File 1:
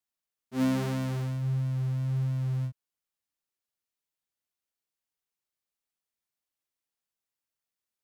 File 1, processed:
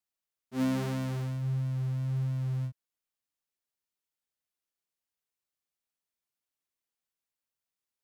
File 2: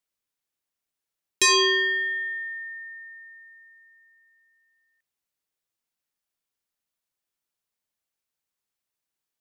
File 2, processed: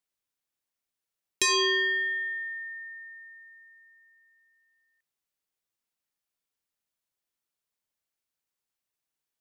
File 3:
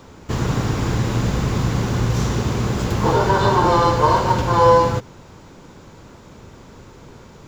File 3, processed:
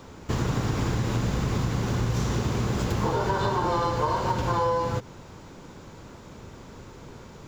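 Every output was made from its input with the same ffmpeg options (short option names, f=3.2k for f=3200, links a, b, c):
-af "acompressor=threshold=-20dB:ratio=6,volume=-2dB"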